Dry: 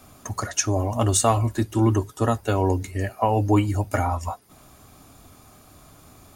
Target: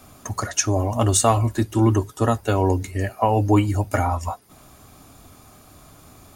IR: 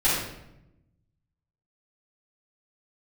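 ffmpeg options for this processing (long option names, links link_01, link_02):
-af "volume=2dB"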